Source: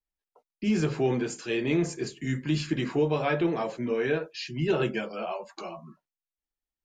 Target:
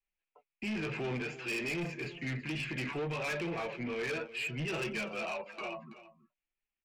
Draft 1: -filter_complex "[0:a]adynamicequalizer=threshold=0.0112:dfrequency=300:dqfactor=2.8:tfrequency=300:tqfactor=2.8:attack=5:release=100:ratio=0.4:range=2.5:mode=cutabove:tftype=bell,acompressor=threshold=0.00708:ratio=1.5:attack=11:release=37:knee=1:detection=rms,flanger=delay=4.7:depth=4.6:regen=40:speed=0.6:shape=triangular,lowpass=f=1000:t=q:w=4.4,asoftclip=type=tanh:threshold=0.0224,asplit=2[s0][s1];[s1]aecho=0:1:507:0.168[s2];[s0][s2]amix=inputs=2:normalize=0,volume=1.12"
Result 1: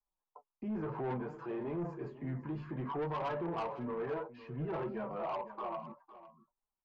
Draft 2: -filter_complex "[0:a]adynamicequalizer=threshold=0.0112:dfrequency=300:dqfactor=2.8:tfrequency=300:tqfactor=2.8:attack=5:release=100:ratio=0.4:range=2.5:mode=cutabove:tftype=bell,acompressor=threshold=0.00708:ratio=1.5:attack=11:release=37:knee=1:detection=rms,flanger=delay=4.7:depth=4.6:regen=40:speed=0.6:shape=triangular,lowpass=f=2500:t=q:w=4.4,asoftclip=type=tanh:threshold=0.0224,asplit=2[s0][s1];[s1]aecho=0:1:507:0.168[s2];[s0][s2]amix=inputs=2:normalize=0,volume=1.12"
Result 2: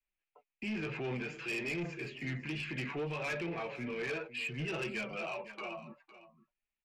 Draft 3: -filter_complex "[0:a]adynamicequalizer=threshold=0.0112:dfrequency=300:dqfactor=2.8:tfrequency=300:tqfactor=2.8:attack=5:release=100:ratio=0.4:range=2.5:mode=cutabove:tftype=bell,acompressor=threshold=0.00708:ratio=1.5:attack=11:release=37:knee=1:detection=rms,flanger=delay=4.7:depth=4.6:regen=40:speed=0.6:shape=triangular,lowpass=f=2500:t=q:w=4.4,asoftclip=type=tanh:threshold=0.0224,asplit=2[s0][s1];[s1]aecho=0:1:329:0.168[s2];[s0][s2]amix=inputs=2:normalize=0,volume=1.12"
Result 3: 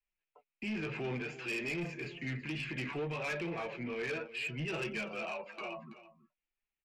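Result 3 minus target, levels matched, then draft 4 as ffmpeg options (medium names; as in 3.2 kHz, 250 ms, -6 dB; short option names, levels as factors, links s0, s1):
compression: peak gain reduction +3.5 dB
-filter_complex "[0:a]adynamicequalizer=threshold=0.0112:dfrequency=300:dqfactor=2.8:tfrequency=300:tqfactor=2.8:attack=5:release=100:ratio=0.4:range=2.5:mode=cutabove:tftype=bell,acompressor=threshold=0.0237:ratio=1.5:attack=11:release=37:knee=1:detection=rms,flanger=delay=4.7:depth=4.6:regen=40:speed=0.6:shape=triangular,lowpass=f=2500:t=q:w=4.4,asoftclip=type=tanh:threshold=0.0224,asplit=2[s0][s1];[s1]aecho=0:1:329:0.168[s2];[s0][s2]amix=inputs=2:normalize=0,volume=1.12"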